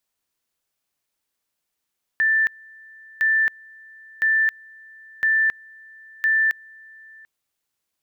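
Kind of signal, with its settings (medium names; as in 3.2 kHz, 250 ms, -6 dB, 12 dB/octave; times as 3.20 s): two-level tone 1.77 kHz -15.5 dBFS, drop 27 dB, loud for 0.27 s, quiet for 0.74 s, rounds 5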